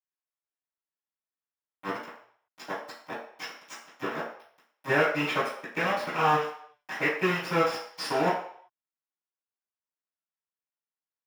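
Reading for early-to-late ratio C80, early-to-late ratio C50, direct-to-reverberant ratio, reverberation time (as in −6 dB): 8.0 dB, 4.0 dB, −17.0 dB, 0.60 s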